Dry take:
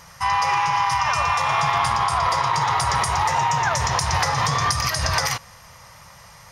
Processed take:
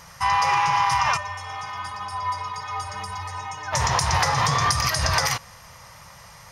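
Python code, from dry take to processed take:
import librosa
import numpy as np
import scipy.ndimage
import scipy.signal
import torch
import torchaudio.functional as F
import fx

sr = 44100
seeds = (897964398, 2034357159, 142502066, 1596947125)

y = fx.stiff_resonator(x, sr, f0_hz=91.0, decay_s=0.49, stiffness=0.03, at=(1.16, 3.72), fade=0.02)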